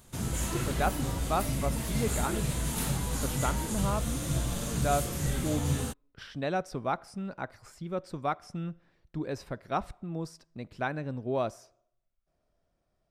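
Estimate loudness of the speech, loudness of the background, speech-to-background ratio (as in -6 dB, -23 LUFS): -35.5 LUFS, -32.0 LUFS, -3.5 dB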